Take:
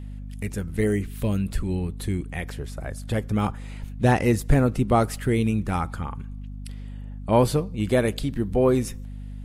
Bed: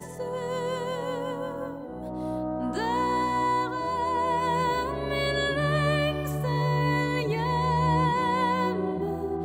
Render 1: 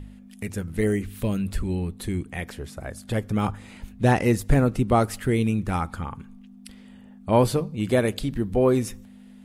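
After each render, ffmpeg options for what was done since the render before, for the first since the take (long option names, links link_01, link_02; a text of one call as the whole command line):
ffmpeg -i in.wav -af "bandreject=frequency=50:width_type=h:width=4,bandreject=frequency=100:width_type=h:width=4,bandreject=frequency=150:width_type=h:width=4" out.wav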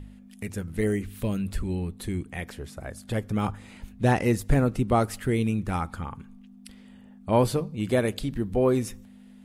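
ffmpeg -i in.wav -af "volume=-2.5dB" out.wav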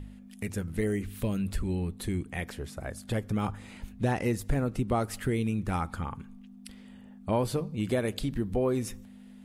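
ffmpeg -i in.wav -af "acompressor=threshold=-26dB:ratio=2.5" out.wav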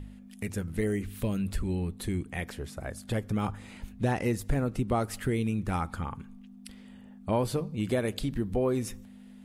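ffmpeg -i in.wav -af anull out.wav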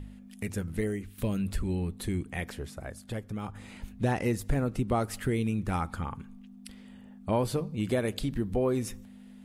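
ffmpeg -i in.wav -filter_complex "[0:a]asplit=3[link_01][link_02][link_03];[link_01]atrim=end=1.18,asetpts=PTS-STARTPTS,afade=type=out:start_time=0.74:duration=0.44:silence=0.281838[link_04];[link_02]atrim=start=1.18:end=3.55,asetpts=PTS-STARTPTS,afade=type=in:duration=0.004:curve=hsin:silence=0.281838,afade=type=out:start_time=1.4:duration=0.97:curve=qua:silence=0.446684[link_05];[link_03]atrim=start=3.55,asetpts=PTS-STARTPTS,afade=type=in:duration=0.004:curve=hsin:silence=0.446684[link_06];[link_04][link_05][link_06]concat=n=3:v=0:a=1" out.wav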